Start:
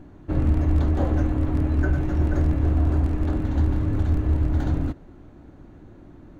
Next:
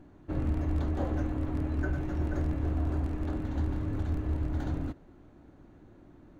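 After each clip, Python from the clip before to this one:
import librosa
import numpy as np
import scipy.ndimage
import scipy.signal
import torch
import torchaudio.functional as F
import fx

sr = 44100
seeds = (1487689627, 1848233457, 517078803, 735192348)

y = fx.low_shelf(x, sr, hz=180.0, db=-4.0)
y = F.gain(torch.from_numpy(y), -6.5).numpy()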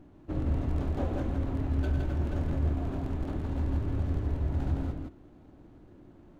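y = scipy.signal.medfilt(x, 25)
y = y + 10.0 ** (-4.0 / 20.0) * np.pad(y, (int(164 * sr / 1000.0), 0))[:len(y)]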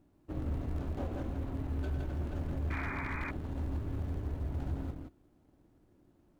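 y = fx.law_mismatch(x, sr, coded='A')
y = fx.spec_paint(y, sr, seeds[0], shape='noise', start_s=2.7, length_s=0.61, low_hz=810.0, high_hz=2500.0, level_db=-36.0)
y = fx.clip_asym(y, sr, top_db=-25.0, bottom_db=-24.0)
y = F.gain(torch.from_numpy(y), -4.5).numpy()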